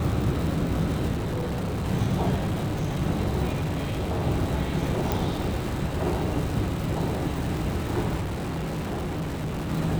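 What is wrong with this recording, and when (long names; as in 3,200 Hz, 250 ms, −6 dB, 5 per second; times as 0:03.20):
surface crackle 260 per second −30 dBFS
0:01.14–0:01.86: clipping −25 dBFS
0:02.34–0:03.02: clipping −22.5 dBFS
0:03.52–0:04.25: clipping −23.5 dBFS
0:05.12: click
0:08.20–0:09.71: clipping −26.5 dBFS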